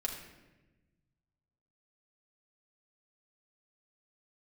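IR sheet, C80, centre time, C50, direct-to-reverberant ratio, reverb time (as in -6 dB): 7.5 dB, 32 ms, 5.5 dB, -0.5 dB, 1.1 s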